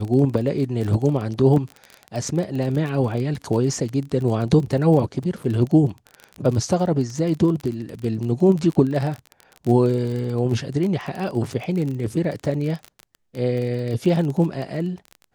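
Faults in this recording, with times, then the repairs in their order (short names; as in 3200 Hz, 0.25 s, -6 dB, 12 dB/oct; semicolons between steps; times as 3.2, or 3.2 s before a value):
crackle 27/s -26 dBFS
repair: de-click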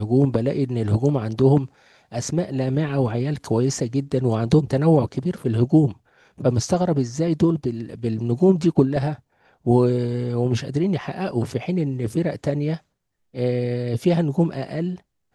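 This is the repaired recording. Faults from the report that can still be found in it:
none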